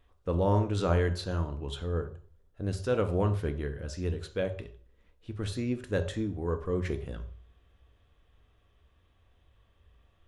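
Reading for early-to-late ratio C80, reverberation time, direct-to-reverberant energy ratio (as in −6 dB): 15.5 dB, 0.45 s, 7.0 dB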